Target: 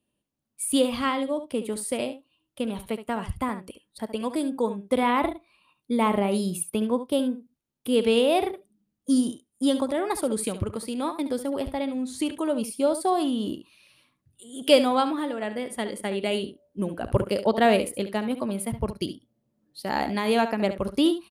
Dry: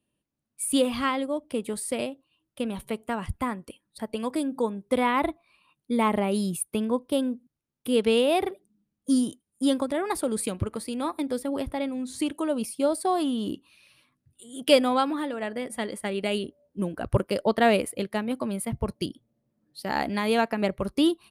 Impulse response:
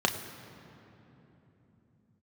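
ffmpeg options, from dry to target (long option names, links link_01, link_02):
-filter_complex "[0:a]aecho=1:1:70:0.266,asplit=2[link_01][link_02];[1:a]atrim=start_sample=2205,atrim=end_sample=4410[link_03];[link_02][link_03]afir=irnorm=-1:irlink=0,volume=-27dB[link_04];[link_01][link_04]amix=inputs=2:normalize=0"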